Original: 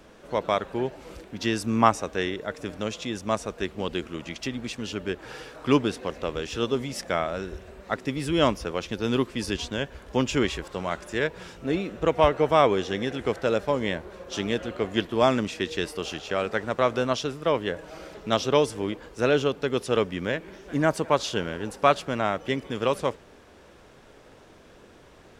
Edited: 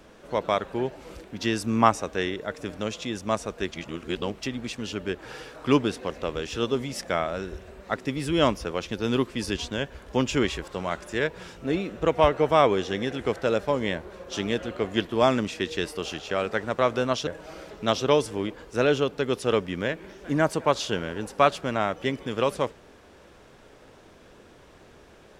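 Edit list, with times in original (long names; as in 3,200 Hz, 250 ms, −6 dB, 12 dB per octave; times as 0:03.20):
0:03.71–0:04.39: reverse
0:17.27–0:17.71: remove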